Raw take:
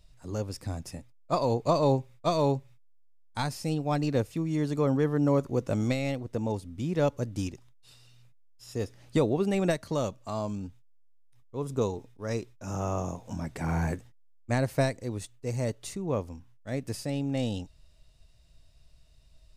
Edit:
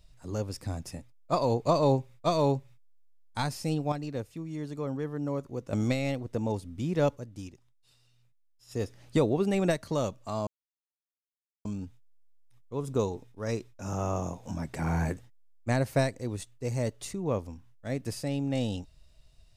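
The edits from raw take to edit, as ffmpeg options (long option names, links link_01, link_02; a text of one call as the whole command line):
ffmpeg -i in.wav -filter_complex "[0:a]asplit=6[link_01][link_02][link_03][link_04][link_05][link_06];[link_01]atrim=end=3.922[link_07];[link_02]atrim=start=3.918:end=5.732,asetpts=PTS-STARTPTS,volume=-8dB[link_08];[link_03]atrim=start=5.728:end=7.33,asetpts=PTS-STARTPTS,afade=type=out:start_time=1.422:duration=0.18:curve=exp:silence=0.334965[link_09];[link_04]atrim=start=7.33:end=8.54,asetpts=PTS-STARTPTS,volume=-9.5dB[link_10];[link_05]atrim=start=8.54:end=10.47,asetpts=PTS-STARTPTS,afade=type=in:duration=0.18:curve=exp:silence=0.334965,afade=type=out:start_time=1.926:duration=0.004:curve=hsin,apad=pad_dur=1.18[link_11];[link_06]atrim=start=10.47,asetpts=PTS-STARTPTS,afade=type=in:duration=0.004:curve=hsin[link_12];[link_07][link_08]acrossfade=duration=0.004:curve1=hsin:curve2=hsin[link_13];[link_09][link_10][link_11][link_12]concat=n=4:v=0:a=1[link_14];[link_13][link_14]acrossfade=duration=0.004:curve1=hsin:curve2=hsin" out.wav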